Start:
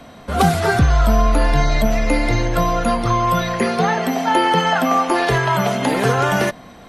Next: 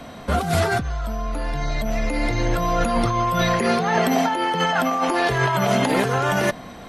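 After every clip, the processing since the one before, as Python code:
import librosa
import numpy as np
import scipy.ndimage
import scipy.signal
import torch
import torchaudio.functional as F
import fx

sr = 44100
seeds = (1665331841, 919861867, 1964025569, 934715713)

y = fx.over_compress(x, sr, threshold_db=-20.0, ratio=-1.0)
y = F.gain(torch.from_numpy(y), -1.0).numpy()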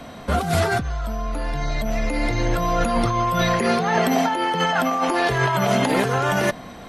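y = x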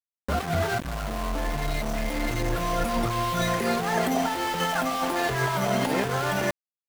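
y = fx.recorder_agc(x, sr, target_db=-13.5, rise_db_per_s=5.4, max_gain_db=30)
y = fx.spec_gate(y, sr, threshold_db=-25, keep='strong')
y = np.where(np.abs(y) >= 10.0 ** (-23.0 / 20.0), y, 0.0)
y = F.gain(torch.from_numpy(y), -5.0).numpy()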